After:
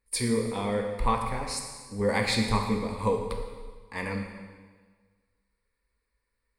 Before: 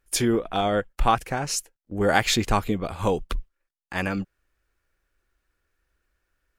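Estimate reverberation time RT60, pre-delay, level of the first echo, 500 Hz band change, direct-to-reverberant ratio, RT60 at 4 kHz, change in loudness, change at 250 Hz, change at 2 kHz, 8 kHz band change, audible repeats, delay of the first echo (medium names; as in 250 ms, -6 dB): 1.5 s, 5 ms, no echo, -3.0 dB, 2.0 dB, 1.4 s, -4.5 dB, -3.0 dB, -5.5 dB, -6.0 dB, no echo, no echo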